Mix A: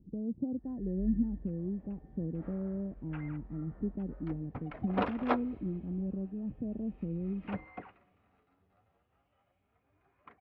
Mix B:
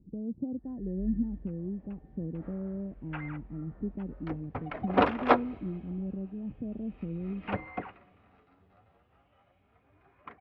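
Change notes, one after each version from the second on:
second sound +8.5 dB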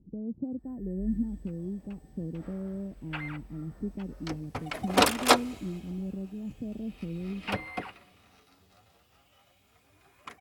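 master: remove Bessel low-pass 1600 Hz, order 4

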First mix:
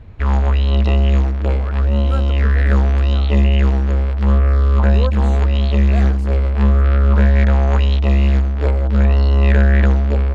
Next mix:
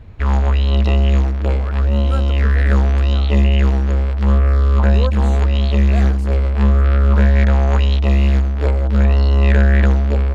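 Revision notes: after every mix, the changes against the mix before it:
master: add high shelf 6300 Hz +6 dB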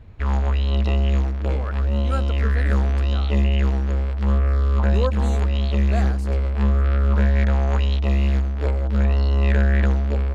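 background -5.5 dB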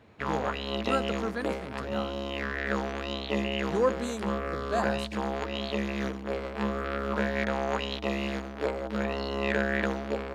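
speech: entry -1.20 s; background: add HPF 260 Hz 12 dB/oct

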